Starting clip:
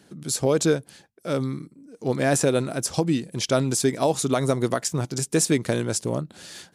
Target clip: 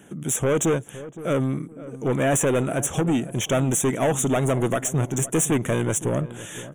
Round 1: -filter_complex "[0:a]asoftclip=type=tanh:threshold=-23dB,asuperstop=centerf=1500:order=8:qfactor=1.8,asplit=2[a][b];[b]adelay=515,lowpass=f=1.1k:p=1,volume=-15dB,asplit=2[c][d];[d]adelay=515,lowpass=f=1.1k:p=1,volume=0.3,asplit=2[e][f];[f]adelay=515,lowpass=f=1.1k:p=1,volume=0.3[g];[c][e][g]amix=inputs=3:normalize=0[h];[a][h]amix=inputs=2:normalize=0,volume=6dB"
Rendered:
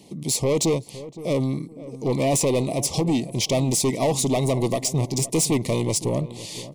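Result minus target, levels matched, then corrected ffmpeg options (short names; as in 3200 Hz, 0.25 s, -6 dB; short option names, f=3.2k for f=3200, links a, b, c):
4000 Hz band +7.0 dB
-filter_complex "[0:a]asoftclip=type=tanh:threshold=-23dB,asuperstop=centerf=4600:order=8:qfactor=1.8,asplit=2[a][b];[b]adelay=515,lowpass=f=1.1k:p=1,volume=-15dB,asplit=2[c][d];[d]adelay=515,lowpass=f=1.1k:p=1,volume=0.3,asplit=2[e][f];[f]adelay=515,lowpass=f=1.1k:p=1,volume=0.3[g];[c][e][g]amix=inputs=3:normalize=0[h];[a][h]amix=inputs=2:normalize=0,volume=6dB"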